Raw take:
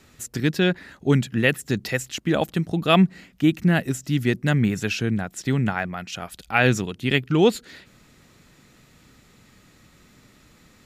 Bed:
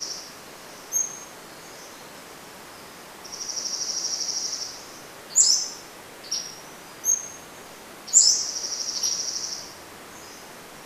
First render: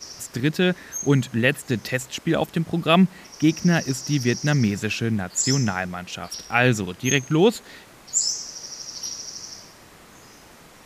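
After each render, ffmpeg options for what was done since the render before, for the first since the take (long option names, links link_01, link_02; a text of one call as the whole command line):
ffmpeg -i in.wav -i bed.wav -filter_complex "[1:a]volume=-6.5dB[link_01];[0:a][link_01]amix=inputs=2:normalize=0" out.wav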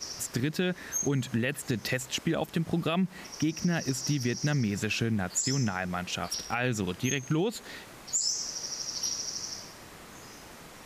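ffmpeg -i in.wav -af "alimiter=limit=-15.5dB:level=0:latency=1:release=175,acompressor=threshold=-25dB:ratio=3" out.wav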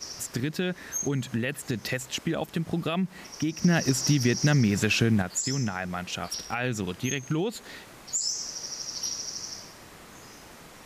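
ffmpeg -i in.wav -filter_complex "[0:a]asplit=3[link_01][link_02][link_03];[link_01]atrim=end=3.642[link_04];[link_02]atrim=start=3.638:end=5.222,asetpts=PTS-STARTPTS,volume=6dB[link_05];[link_03]atrim=start=5.218[link_06];[link_04][link_05]acrossfade=duration=0.004:curve1=hsin:curve2=hsin[link_07];[link_07][link_06]acrossfade=duration=0.004:curve1=hsin:curve2=hsin" out.wav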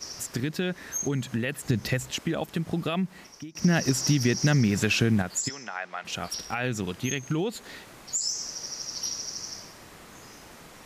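ffmpeg -i in.wav -filter_complex "[0:a]asettb=1/sr,asplit=3[link_01][link_02][link_03];[link_01]atrim=end=1.644[link_04];[link_02]atrim=start=1.64:end=2.12,asetpts=PTS-STARTPTS,afade=type=in:duration=0.004:curve=qsin,afade=type=out:start_time=0.476:duration=0.004:curve=qsin,lowshelf=frequency=180:gain=11[link_05];[link_03]atrim=start=2.116[link_06];[link_04][link_05]acrossfade=duration=0.004:curve1=hsin:curve2=qsin[link_07];[link_07][link_06]acrossfade=duration=0.004:curve1=qsin:curve2=hsin,asplit=3[link_08][link_09][link_10];[link_08]afade=type=out:start_time=5.48:duration=0.02[link_11];[link_09]highpass=620,lowpass=4200,afade=type=in:start_time=5.48:duration=0.02,afade=type=out:start_time=6.04:duration=0.02[link_12];[link_10]afade=type=in:start_time=6.04:duration=0.02[link_13];[link_11][link_12][link_13]amix=inputs=3:normalize=0,asplit=2[link_14][link_15];[link_14]atrim=end=3.55,asetpts=PTS-STARTPTS,afade=type=out:start_time=3.01:duration=0.54:silence=0.0749894[link_16];[link_15]atrim=start=3.55,asetpts=PTS-STARTPTS,afade=type=in:duration=0.004:curve=hsin:silence=0.0749894[link_17];[link_16][link_17]concat=n=2:v=0:a=1" out.wav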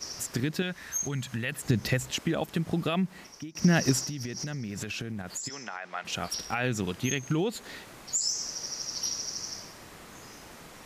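ffmpeg -i in.wav -filter_complex "[0:a]asettb=1/sr,asplit=3[link_01][link_02][link_03];[link_01]atrim=end=0.624[link_04];[link_02]atrim=start=0.62:end=1.52,asetpts=PTS-STARTPTS,afade=type=in:duration=0.004:curve=qsin,afade=type=out:start_time=0.896:duration=0.004:curve=qsin,equalizer=frequency=340:width=0.69:gain=-8.5[link_05];[link_03]atrim=start=1.516[link_06];[link_04][link_05]acrossfade=duration=0.004:curve1=hsin:curve2=qsin[link_07];[link_07][link_06]acrossfade=duration=0.004:curve1=qsin:curve2=hsin,asettb=1/sr,asplit=3[link_08][link_09][link_10];[link_08]atrim=end=3.994[link_11];[link_09]atrim=start=3.99:end=5.95,asetpts=PTS-STARTPTS,afade=type=in:duration=0.004:curve=qsin,afade=type=out:start_time=1.956:duration=0.004:curve=qsin,acompressor=threshold=-31dB:ratio=16:attack=3.2:release=140:knee=1:detection=peak[link_12];[link_10]atrim=start=5.946[link_13];[link_11][link_12]acrossfade=duration=0.004:curve1=hsin:curve2=qsin[link_14];[link_14][link_13]acrossfade=duration=0.004:curve1=qsin:curve2=hsin" out.wav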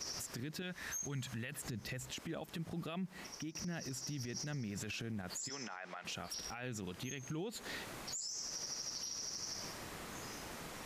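ffmpeg -i in.wav -af "acompressor=threshold=-36dB:ratio=6,alimiter=level_in=10dB:limit=-24dB:level=0:latency=1:release=51,volume=-10dB" out.wav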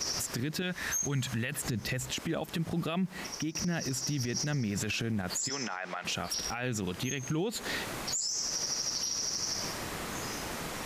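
ffmpeg -i in.wav -af "volume=10dB" out.wav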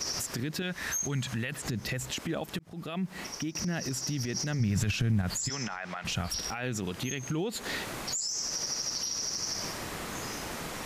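ffmpeg -i in.wav -filter_complex "[0:a]asettb=1/sr,asplit=3[link_01][link_02][link_03];[link_01]atrim=end=1.084[link_04];[link_02]atrim=start=1.08:end=1.67,asetpts=PTS-STARTPTS,afade=type=in:duration=0.004:curve=qsin,afade=type=out:start_time=0.586:duration=0.004:curve=qsin,acrossover=split=8600[link_05][link_06];[link_06]acompressor=threshold=-51dB:ratio=4:attack=1:release=60[link_07];[link_05][link_07]amix=inputs=2:normalize=0[link_08];[link_03]atrim=start=1.666[link_09];[link_04][link_08]acrossfade=duration=0.004:curve1=hsin:curve2=qsin[link_10];[link_10][link_09]acrossfade=duration=0.004:curve1=qsin:curve2=hsin,asplit=3[link_11][link_12][link_13];[link_11]afade=type=out:start_time=4.59:duration=0.02[link_14];[link_12]asubboost=boost=5:cutoff=150,afade=type=in:start_time=4.59:duration=0.02,afade=type=out:start_time=6.38:duration=0.02[link_15];[link_13]afade=type=in:start_time=6.38:duration=0.02[link_16];[link_14][link_15][link_16]amix=inputs=3:normalize=0,asplit=2[link_17][link_18];[link_17]atrim=end=2.59,asetpts=PTS-STARTPTS,afade=type=out:start_time=2.586:duration=0.004:curve=hsin[link_19];[link_18]atrim=start=2.59,asetpts=PTS-STARTPTS,afade=type=in:duration=0.5[link_20];[link_19][link_20]concat=n=2:v=0:a=1" out.wav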